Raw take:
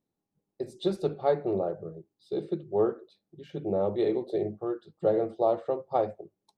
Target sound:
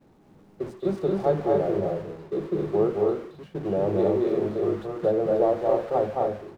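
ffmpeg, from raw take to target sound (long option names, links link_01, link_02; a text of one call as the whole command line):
ffmpeg -i in.wav -filter_complex "[0:a]aeval=exprs='val(0)+0.5*0.0188*sgn(val(0))':channel_layout=same,lowpass=frequency=1200:poles=1,agate=range=-33dB:threshold=-33dB:ratio=3:detection=peak,asplit=2[link_01][link_02];[link_02]aecho=0:1:221.6|262.4:0.708|0.631[link_03];[link_01][link_03]amix=inputs=2:normalize=0,volume=1.5dB" out.wav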